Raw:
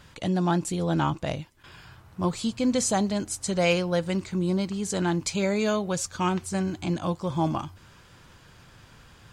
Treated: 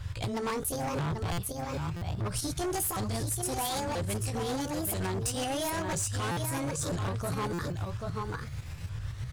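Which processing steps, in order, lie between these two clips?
repeated pitch sweeps +9 st, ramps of 0.988 s; resonant low shelf 150 Hz +12.5 dB, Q 3; limiter -19 dBFS, peak gain reduction 7 dB; echo 0.786 s -8 dB; tremolo saw up 7.9 Hz, depth 50%; hard clip -31.5 dBFS, distortion -8 dB; dynamic EQ 9300 Hz, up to +7 dB, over -55 dBFS, Q 0.93; compressor 3:1, threshold -37 dBFS, peak gain reduction 7 dB; stuck buffer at 1.32/1.96/6.31/7.53, samples 256, times 9; gain +6 dB

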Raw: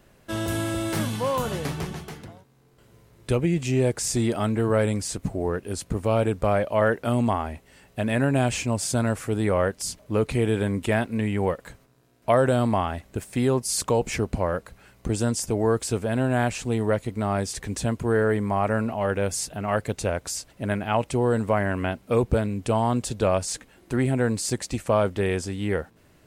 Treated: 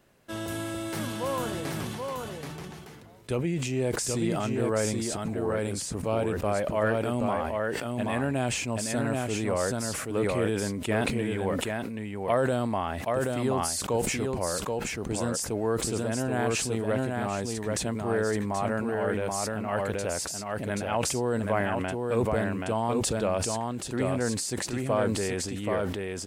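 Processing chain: low shelf 84 Hz -10 dB; echo 0.779 s -3.5 dB; sustainer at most 30 dB/s; gain -5.5 dB

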